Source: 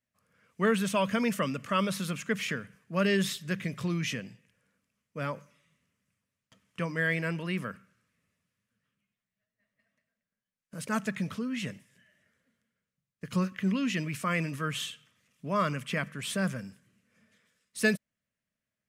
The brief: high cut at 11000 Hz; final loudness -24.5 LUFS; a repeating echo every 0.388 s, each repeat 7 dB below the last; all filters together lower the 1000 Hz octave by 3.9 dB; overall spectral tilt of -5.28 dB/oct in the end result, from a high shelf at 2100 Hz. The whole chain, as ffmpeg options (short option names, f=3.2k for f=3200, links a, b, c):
-af "lowpass=11k,equalizer=f=1k:t=o:g=-3.5,highshelf=f=2.1k:g=-5,aecho=1:1:388|776|1164|1552|1940:0.447|0.201|0.0905|0.0407|0.0183,volume=8dB"